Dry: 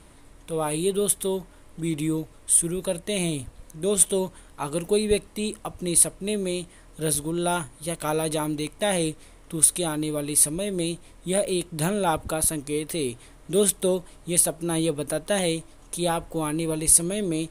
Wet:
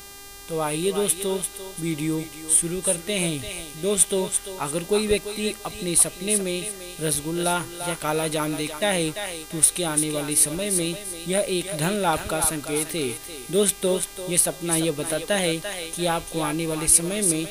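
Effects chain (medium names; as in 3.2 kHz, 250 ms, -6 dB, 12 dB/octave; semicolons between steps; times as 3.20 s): thinning echo 342 ms, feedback 34%, high-pass 730 Hz, level -6 dB; dynamic bell 2.2 kHz, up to +5 dB, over -40 dBFS, Q 0.78; mains buzz 400 Hz, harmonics 36, -43 dBFS -1 dB/octave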